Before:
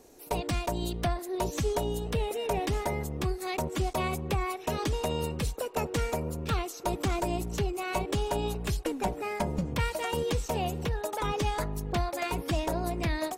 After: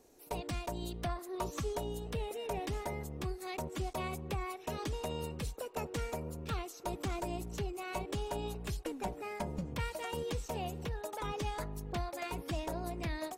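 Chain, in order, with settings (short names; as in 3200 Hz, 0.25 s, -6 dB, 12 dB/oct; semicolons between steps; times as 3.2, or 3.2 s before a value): 1.09–1.65 bell 1200 Hz +11 dB 0.38 oct; gain -8 dB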